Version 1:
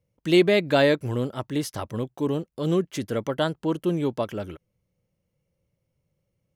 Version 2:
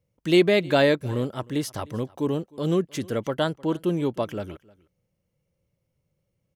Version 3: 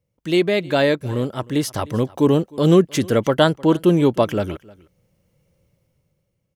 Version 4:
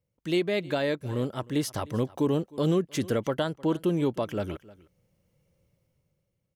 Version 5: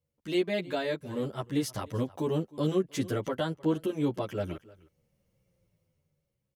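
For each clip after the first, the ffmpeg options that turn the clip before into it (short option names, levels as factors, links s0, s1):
-af "aecho=1:1:308:0.0631"
-af "dynaudnorm=f=240:g=9:m=5.31"
-af "alimiter=limit=0.282:level=0:latency=1:release=354,volume=0.501"
-filter_complex "[0:a]asplit=2[s0][s1];[s1]adelay=10.1,afreqshift=-0.82[s2];[s0][s2]amix=inputs=2:normalize=1"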